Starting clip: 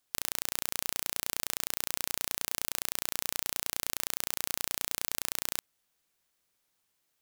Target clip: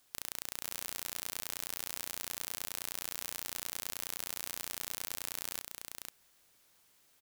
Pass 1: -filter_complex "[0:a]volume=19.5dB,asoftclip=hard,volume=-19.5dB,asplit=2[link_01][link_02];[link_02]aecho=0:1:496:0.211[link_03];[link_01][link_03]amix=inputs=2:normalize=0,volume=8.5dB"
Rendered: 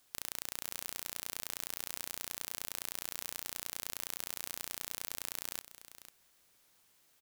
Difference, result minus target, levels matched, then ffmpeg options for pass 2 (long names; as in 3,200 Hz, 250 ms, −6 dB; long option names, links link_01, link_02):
echo-to-direct −9 dB
-filter_complex "[0:a]volume=19.5dB,asoftclip=hard,volume=-19.5dB,asplit=2[link_01][link_02];[link_02]aecho=0:1:496:0.596[link_03];[link_01][link_03]amix=inputs=2:normalize=0,volume=8.5dB"